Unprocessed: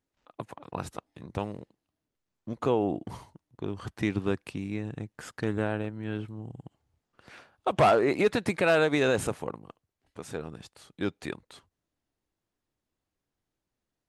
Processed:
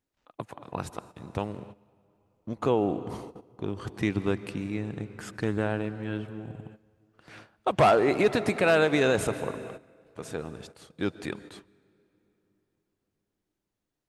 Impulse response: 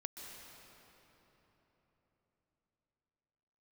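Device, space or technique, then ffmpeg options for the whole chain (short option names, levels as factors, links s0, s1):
keyed gated reverb: -filter_complex "[0:a]asplit=3[s0][s1][s2];[1:a]atrim=start_sample=2205[s3];[s1][s3]afir=irnorm=-1:irlink=0[s4];[s2]apad=whole_len=621314[s5];[s4][s5]sidechaingate=range=0.2:threshold=0.00251:ratio=16:detection=peak,volume=0.596[s6];[s0][s6]amix=inputs=2:normalize=0,volume=0.841"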